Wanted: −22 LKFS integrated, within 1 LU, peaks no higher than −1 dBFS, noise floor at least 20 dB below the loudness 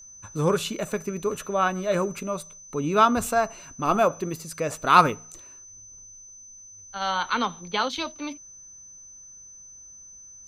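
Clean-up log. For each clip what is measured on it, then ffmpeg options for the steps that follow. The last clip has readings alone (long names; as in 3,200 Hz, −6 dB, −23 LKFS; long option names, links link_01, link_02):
interfering tone 6,100 Hz; level of the tone −44 dBFS; integrated loudness −25.0 LKFS; sample peak −1.5 dBFS; target loudness −22.0 LKFS
→ -af "bandreject=frequency=6100:width=30"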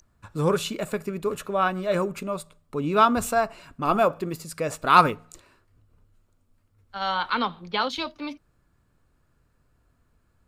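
interfering tone none found; integrated loudness −25.0 LKFS; sample peak −1.5 dBFS; target loudness −22.0 LKFS
→ -af "volume=3dB,alimiter=limit=-1dB:level=0:latency=1"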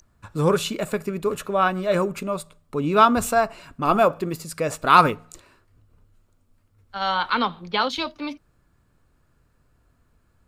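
integrated loudness −22.0 LKFS; sample peak −1.0 dBFS; background noise floor −65 dBFS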